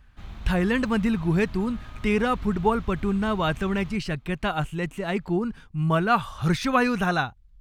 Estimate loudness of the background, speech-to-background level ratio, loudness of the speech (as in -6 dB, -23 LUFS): -42.5 LUFS, 17.0 dB, -25.5 LUFS